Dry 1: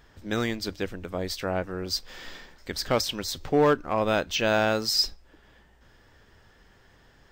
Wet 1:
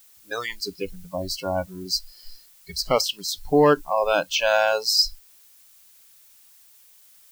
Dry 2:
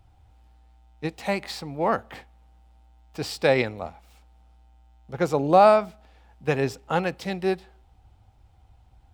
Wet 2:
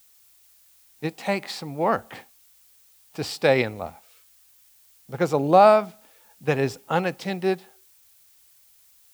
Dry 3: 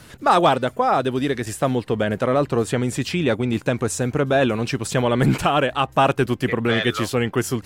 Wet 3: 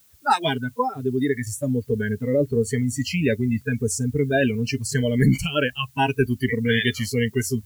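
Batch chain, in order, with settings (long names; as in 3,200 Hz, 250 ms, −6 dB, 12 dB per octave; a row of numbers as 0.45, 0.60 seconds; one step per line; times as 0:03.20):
noise reduction from a noise print of the clip's start 28 dB
background noise blue −58 dBFS
loudness normalisation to −23 LKFS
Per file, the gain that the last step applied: +4.5, +1.0, +1.0 decibels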